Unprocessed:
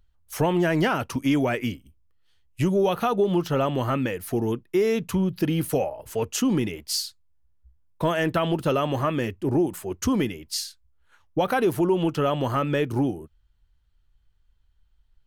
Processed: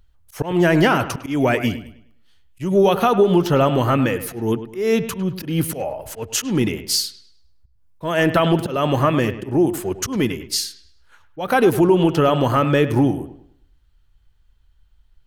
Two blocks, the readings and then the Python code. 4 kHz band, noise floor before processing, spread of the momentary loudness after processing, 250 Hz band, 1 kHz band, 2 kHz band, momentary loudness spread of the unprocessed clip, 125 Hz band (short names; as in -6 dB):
+6.5 dB, -64 dBFS, 11 LU, +5.0 dB, +6.0 dB, +6.5 dB, 7 LU, +5.5 dB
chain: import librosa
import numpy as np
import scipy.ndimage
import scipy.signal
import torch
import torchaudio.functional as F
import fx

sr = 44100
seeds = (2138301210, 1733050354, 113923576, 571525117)

y = fx.auto_swell(x, sr, attack_ms=194.0)
y = fx.echo_wet_lowpass(y, sr, ms=103, feedback_pct=34, hz=3300.0, wet_db=-12.5)
y = F.gain(torch.from_numpy(y), 7.0).numpy()